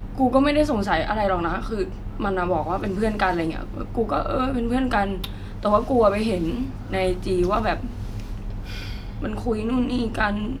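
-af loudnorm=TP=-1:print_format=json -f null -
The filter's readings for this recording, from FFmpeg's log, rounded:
"input_i" : "-24.2",
"input_tp" : "-5.8",
"input_lra" : "4.2",
"input_thresh" : "-34.4",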